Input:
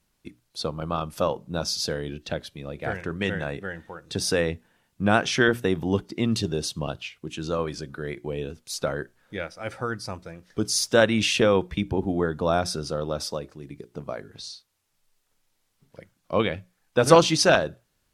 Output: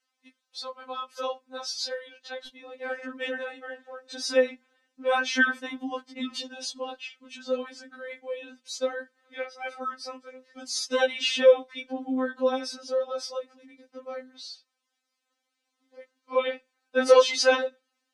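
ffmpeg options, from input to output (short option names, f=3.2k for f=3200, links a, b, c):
-af "asetnsamples=n=441:p=0,asendcmd='2.47 highpass f 300',highpass=660,lowpass=6.1k,afftfilt=real='re*3.46*eq(mod(b,12),0)':imag='im*3.46*eq(mod(b,12),0)':win_size=2048:overlap=0.75"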